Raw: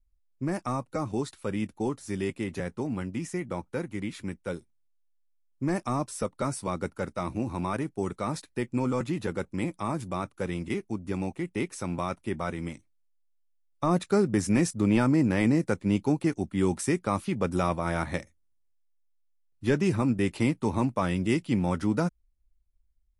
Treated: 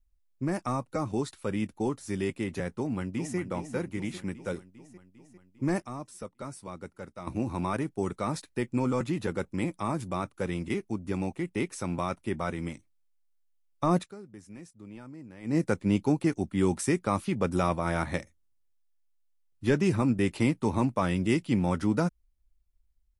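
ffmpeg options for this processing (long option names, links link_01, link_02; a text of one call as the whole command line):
ffmpeg -i in.wav -filter_complex "[0:a]asplit=2[link_01][link_02];[link_02]afade=type=in:start_time=2.75:duration=0.01,afade=type=out:start_time=3.37:duration=0.01,aecho=0:1:400|800|1200|1600|2000|2400|2800|3200|3600:0.354813|0.230629|0.149909|0.0974406|0.0633364|0.0411687|0.0267596|0.0173938|0.0113059[link_03];[link_01][link_03]amix=inputs=2:normalize=0,asplit=5[link_04][link_05][link_06][link_07][link_08];[link_04]atrim=end=5.822[link_09];[link_05]atrim=start=5.818:end=7.272,asetpts=PTS-STARTPTS,volume=-10dB[link_10];[link_06]atrim=start=7.268:end=14.16,asetpts=PTS-STARTPTS,afade=type=out:start_time=6.722:duration=0.17:curve=qua:silence=0.0749894[link_11];[link_07]atrim=start=14.16:end=15.4,asetpts=PTS-STARTPTS,volume=-22.5dB[link_12];[link_08]atrim=start=15.4,asetpts=PTS-STARTPTS,afade=type=in:duration=0.17:curve=qua:silence=0.0749894[link_13];[link_09][link_10]acrossfade=duration=0.004:curve1=hsin:curve2=hsin[link_14];[link_11][link_12][link_13]concat=n=3:v=0:a=1[link_15];[link_14][link_15]acrossfade=duration=0.004:curve1=hsin:curve2=hsin" out.wav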